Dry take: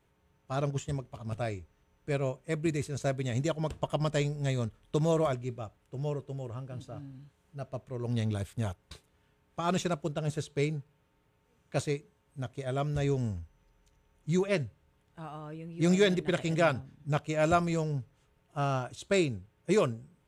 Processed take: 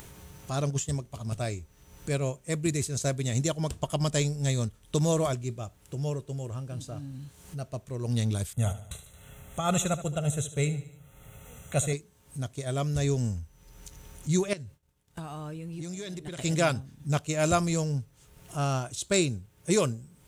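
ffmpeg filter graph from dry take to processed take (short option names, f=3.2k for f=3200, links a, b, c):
-filter_complex "[0:a]asettb=1/sr,asplit=3[a][b][c];[a]atrim=end=8.534[d];[b]atrim=start=8.53:end=11.93,asetpts=PTS-STARTPTS,afade=t=in:d=0.004:c=qsin,afade=t=out:st=3.396:d=0.004:c=qsin,asuperstop=centerf=4900:order=4:qfactor=1.8,aecho=1:1:1.5:0.52,atrim=end_sample=149940,aecho=1:1:74|148|222|296:0.211|0.0972|0.0447|0.0206,atrim=end_sample=149940[e];[c]atrim=start=11.926[f];[d][e]acrossfade=d=0.004:c1=hsin:c2=qsin[g];[g][f]acrossfade=d=0.004:c1=qsin:c2=hsin,asettb=1/sr,asplit=3[h][i][j];[h]atrim=end=14.534[k];[i]atrim=start=14.53:end=16.39,asetpts=PTS-STARTPTS,afade=t=in:d=0.004:c=qsin,afade=t=out:st=1.856:d=0.004:c=qsin,agate=range=-33dB:threshold=-57dB:ratio=3:release=100:detection=peak,acompressor=threshold=-40dB:ratio=6:attack=3.2:release=140:knee=1:detection=peak[l];[j]atrim=start=16.386[m];[k][l]acrossfade=d=0.004:c1=hsin:c2=qsin[n];[n][m]acrossfade=d=0.004:c1=qsin:c2=hsin,bass=f=250:g=4,treble=f=4k:g=14,acompressor=mode=upward:threshold=-32dB:ratio=2.5"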